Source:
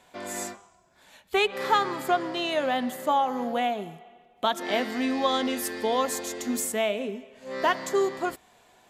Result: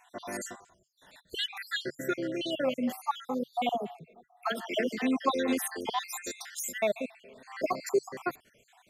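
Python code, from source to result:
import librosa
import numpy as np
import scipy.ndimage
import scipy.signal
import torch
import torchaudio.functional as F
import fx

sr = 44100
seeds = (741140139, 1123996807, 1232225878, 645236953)

y = fx.spec_dropout(x, sr, seeds[0], share_pct=63)
y = fx.peak_eq(y, sr, hz=140.0, db=4.0, octaves=0.29)
y = fx.dispersion(y, sr, late='lows', ms=66.0, hz=720.0, at=(3.69, 5.89))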